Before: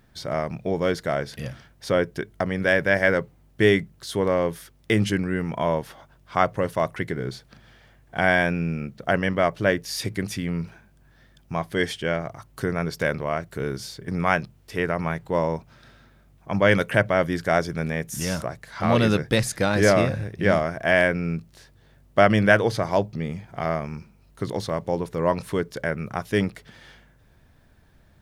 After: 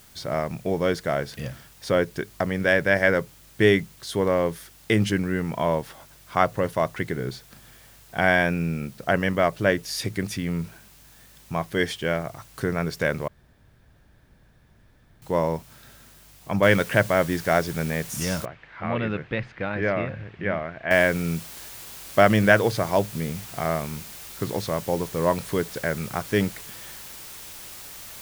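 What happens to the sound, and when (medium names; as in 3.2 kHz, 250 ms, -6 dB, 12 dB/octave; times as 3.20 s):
13.28–15.22 s: room tone
16.63 s: noise floor step -53 dB -41 dB
18.45–20.91 s: four-pole ladder low-pass 2.9 kHz, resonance 35%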